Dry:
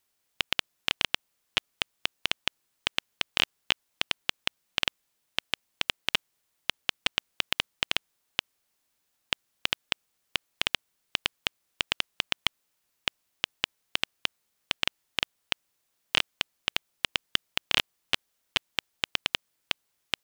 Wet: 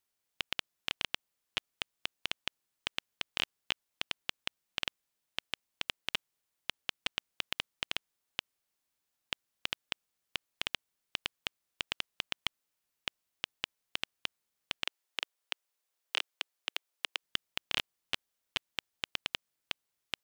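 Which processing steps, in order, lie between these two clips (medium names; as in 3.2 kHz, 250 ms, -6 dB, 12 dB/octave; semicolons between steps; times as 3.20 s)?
14.84–17.22 s: high-pass 370 Hz 24 dB/octave; trim -8 dB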